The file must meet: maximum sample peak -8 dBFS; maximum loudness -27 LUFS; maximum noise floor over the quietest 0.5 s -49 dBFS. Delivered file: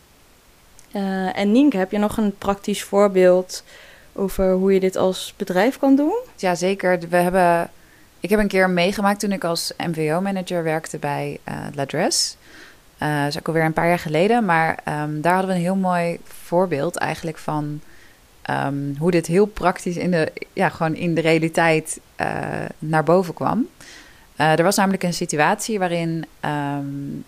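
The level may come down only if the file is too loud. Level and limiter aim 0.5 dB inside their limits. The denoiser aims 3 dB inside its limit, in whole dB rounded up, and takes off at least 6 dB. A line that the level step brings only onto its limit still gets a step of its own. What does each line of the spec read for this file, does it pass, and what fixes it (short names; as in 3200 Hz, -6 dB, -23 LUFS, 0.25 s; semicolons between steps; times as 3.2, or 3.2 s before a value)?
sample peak -4.0 dBFS: fail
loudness -20.5 LUFS: fail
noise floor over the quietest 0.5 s -52 dBFS: OK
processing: gain -7 dB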